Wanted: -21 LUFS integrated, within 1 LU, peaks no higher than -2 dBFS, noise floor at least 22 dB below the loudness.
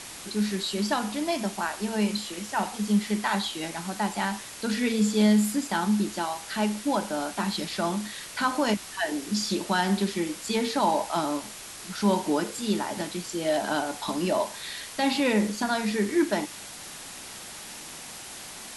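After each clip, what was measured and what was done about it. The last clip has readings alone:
noise floor -42 dBFS; noise floor target -50 dBFS; loudness -27.5 LUFS; peak -11.5 dBFS; loudness target -21.0 LUFS
-> noise print and reduce 8 dB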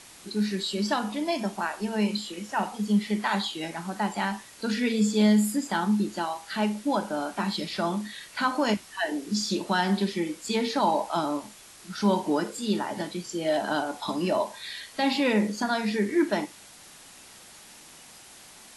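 noise floor -50 dBFS; loudness -27.5 LUFS; peak -11.5 dBFS; loudness target -21.0 LUFS
-> gain +6.5 dB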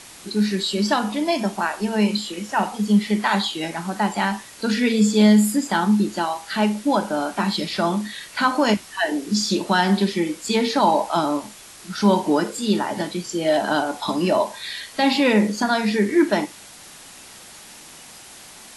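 loudness -21.0 LUFS; peak -5.5 dBFS; noise floor -43 dBFS

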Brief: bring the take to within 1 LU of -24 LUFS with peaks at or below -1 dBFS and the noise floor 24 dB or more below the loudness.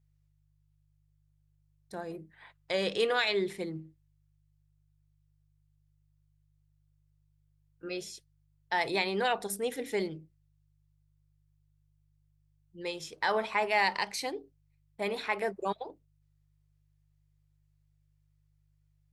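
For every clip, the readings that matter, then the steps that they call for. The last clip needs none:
hum 50 Hz; harmonics up to 150 Hz; hum level -67 dBFS; loudness -32.0 LUFS; peak -15.5 dBFS; loudness target -24.0 LUFS
-> de-hum 50 Hz, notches 3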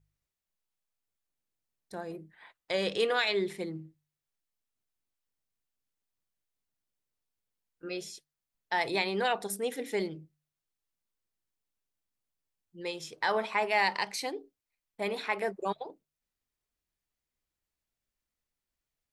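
hum none; loudness -32.0 LUFS; peak -15.5 dBFS; loudness target -24.0 LUFS
-> gain +8 dB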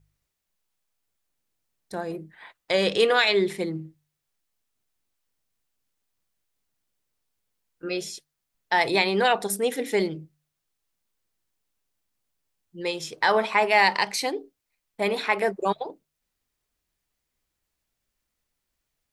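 loudness -24.0 LUFS; peak -7.5 dBFS; noise floor -82 dBFS

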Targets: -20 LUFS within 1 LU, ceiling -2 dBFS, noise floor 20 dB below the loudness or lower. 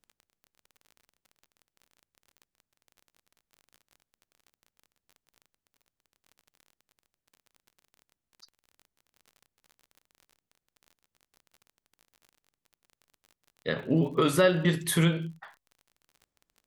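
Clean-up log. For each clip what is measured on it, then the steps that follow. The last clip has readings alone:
ticks 32/s; loudness -26.5 LUFS; peak -10.5 dBFS; loudness target -20.0 LUFS
-> de-click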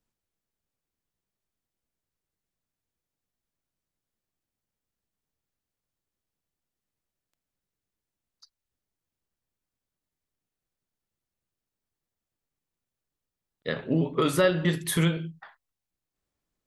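ticks 0.12/s; loudness -26.0 LUFS; peak -10.5 dBFS; loudness target -20.0 LUFS
-> gain +6 dB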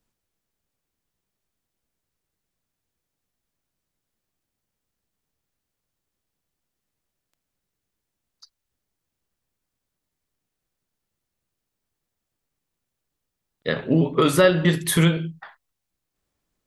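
loudness -20.0 LUFS; peak -4.5 dBFS; noise floor -83 dBFS

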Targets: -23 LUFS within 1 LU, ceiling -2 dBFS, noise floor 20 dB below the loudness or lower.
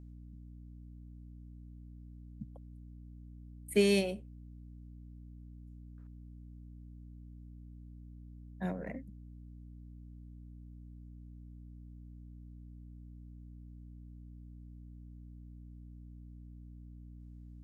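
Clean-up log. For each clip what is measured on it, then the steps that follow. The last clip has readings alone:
hum 60 Hz; harmonics up to 300 Hz; hum level -48 dBFS; loudness -43.0 LUFS; peak -15.0 dBFS; loudness target -23.0 LUFS
-> de-hum 60 Hz, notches 5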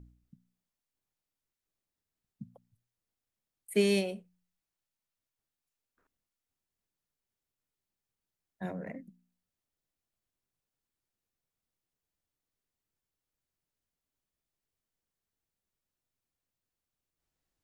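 hum none; loudness -32.5 LUFS; peak -15.0 dBFS; loudness target -23.0 LUFS
-> gain +9.5 dB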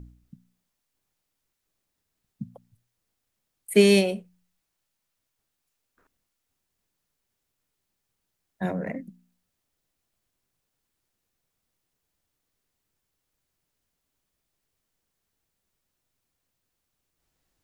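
loudness -23.0 LUFS; peak -5.5 dBFS; noise floor -81 dBFS

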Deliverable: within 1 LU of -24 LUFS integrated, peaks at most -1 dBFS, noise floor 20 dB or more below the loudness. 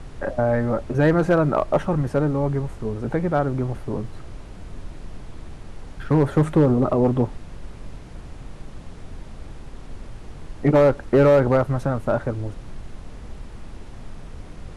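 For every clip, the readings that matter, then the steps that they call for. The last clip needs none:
clipped 0.7%; flat tops at -9.0 dBFS; noise floor -40 dBFS; noise floor target -41 dBFS; loudness -21.0 LUFS; peak -9.0 dBFS; loudness target -24.0 LUFS
-> clip repair -9 dBFS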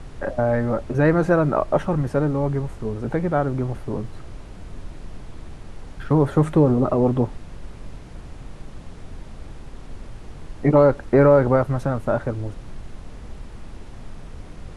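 clipped 0.0%; noise floor -40 dBFS; noise floor target -41 dBFS
-> noise print and reduce 6 dB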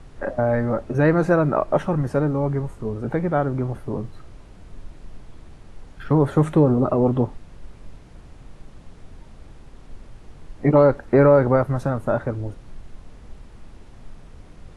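noise floor -45 dBFS; loudness -20.5 LUFS; peak -3.5 dBFS; loudness target -24.0 LUFS
-> gain -3.5 dB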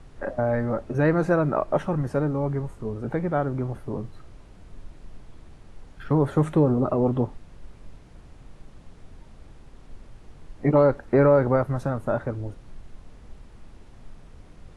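loudness -24.0 LUFS; peak -7.0 dBFS; noise floor -49 dBFS

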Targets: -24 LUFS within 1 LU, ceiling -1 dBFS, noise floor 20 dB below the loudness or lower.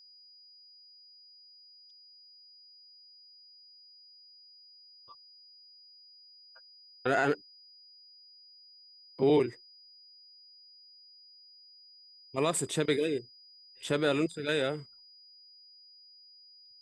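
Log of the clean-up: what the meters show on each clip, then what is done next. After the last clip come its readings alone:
steady tone 4900 Hz; tone level -54 dBFS; loudness -30.5 LUFS; peak -15.0 dBFS; loudness target -24.0 LUFS
-> notch 4900 Hz, Q 30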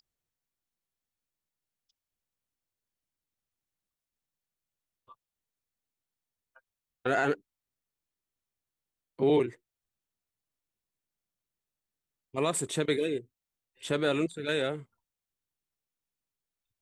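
steady tone none; loudness -30.0 LUFS; peak -15.0 dBFS; loudness target -24.0 LUFS
-> gain +6 dB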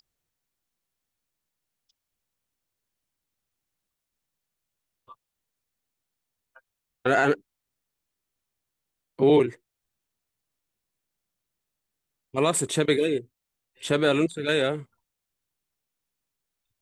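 loudness -24.0 LUFS; peak -9.0 dBFS; noise floor -85 dBFS

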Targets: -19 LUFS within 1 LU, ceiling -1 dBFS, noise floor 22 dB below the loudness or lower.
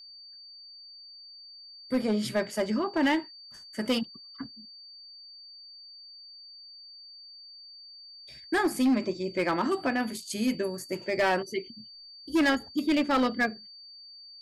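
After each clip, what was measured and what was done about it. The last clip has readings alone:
clipped 1.3%; flat tops at -19.5 dBFS; steady tone 4600 Hz; tone level -46 dBFS; loudness -28.5 LUFS; peak -19.5 dBFS; loudness target -19.0 LUFS
-> clip repair -19.5 dBFS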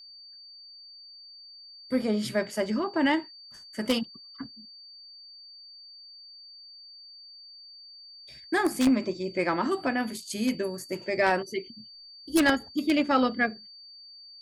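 clipped 0.0%; steady tone 4600 Hz; tone level -46 dBFS
-> notch 4600 Hz, Q 30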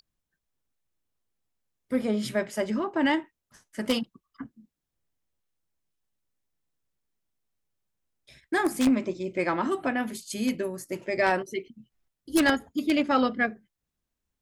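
steady tone none; loudness -27.5 LUFS; peak -10.0 dBFS; loudness target -19.0 LUFS
-> gain +8.5 dB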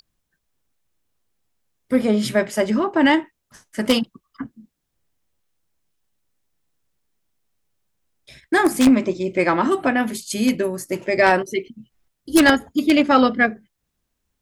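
loudness -19.0 LUFS; peak -1.5 dBFS; noise floor -77 dBFS

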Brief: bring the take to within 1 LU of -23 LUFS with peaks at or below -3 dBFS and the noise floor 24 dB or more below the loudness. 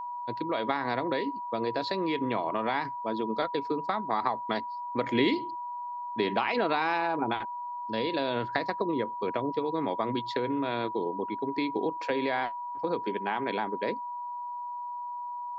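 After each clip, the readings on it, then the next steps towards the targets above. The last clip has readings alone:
steady tone 970 Hz; tone level -34 dBFS; loudness -31.0 LUFS; peak -12.5 dBFS; loudness target -23.0 LUFS
-> notch 970 Hz, Q 30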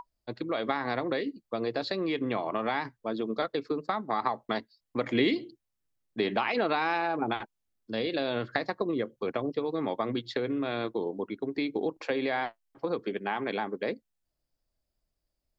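steady tone none; loudness -31.5 LUFS; peak -12.5 dBFS; loudness target -23.0 LUFS
-> gain +8.5 dB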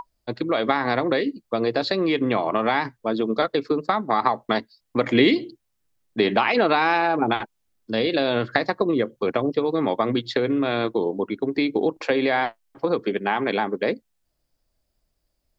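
loudness -23.0 LUFS; peak -4.0 dBFS; noise floor -74 dBFS

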